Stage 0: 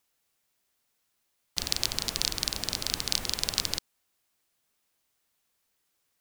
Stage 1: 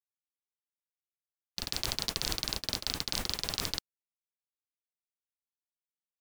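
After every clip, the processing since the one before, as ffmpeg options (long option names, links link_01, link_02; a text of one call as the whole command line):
ffmpeg -i in.wav -af "agate=range=-48dB:threshold=-32dB:ratio=16:detection=peak,alimiter=limit=-20dB:level=0:latency=1:release=42,volume=9dB" out.wav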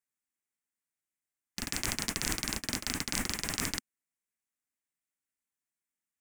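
ffmpeg -i in.wav -af "equalizer=frequency=250:width_type=o:width=1:gain=9,equalizer=frequency=500:width_type=o:width=1:gain=-4,equalizer=frequency=2000:width_type=o:width=1:gain=9,equalizer=frequency=4000:width_type=o:width=1:gain=-10,equalizer=frequency=8000:width_type=o:width=1:gain=9" out.wav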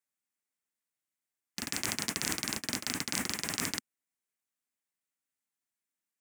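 ffmpeg -i in.wav -af "highpass=120" out.wav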